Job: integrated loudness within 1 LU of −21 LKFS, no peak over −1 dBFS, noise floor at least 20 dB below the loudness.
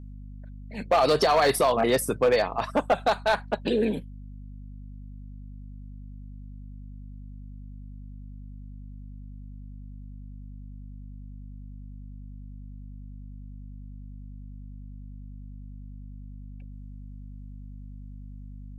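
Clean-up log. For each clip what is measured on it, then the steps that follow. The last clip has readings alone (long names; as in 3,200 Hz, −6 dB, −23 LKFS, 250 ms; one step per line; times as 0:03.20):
share of clipped samples 0.4%; peaks flattened at −15.0 dBFS; mains hum 50 Hz; hum harmonics up to 250 Hz; level of the hum −39 dBFS; integrated loudness −24.0 LKFS; sample peak −15.0 dBFS; target loudness −21.0 LKFS
→ clipped peaks rebuilt −15 dBFS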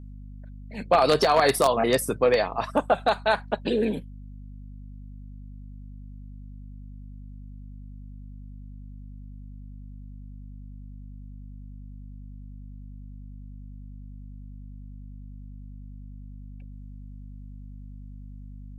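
share of clipped samples 0.0%; mains hum 50 Hz; hum harmonics up to 250 Hz; level of the hum −39 dBFS
→ hum removal 50 Hz, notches 5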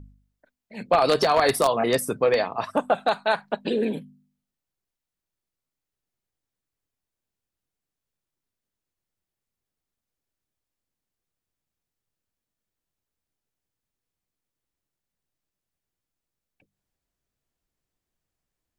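mains hum none found; integrated loudness −23.0 LKFS; sample peak −5.5 dBFS; target loudness −21.0 LKFS
→ level +2 dB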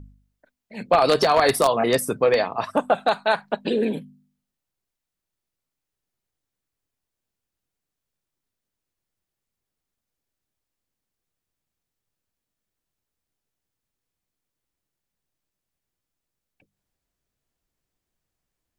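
integrated loudness −21.0 LKFS; sample peak −3.5 dBFS; background noise floor −85 dBFS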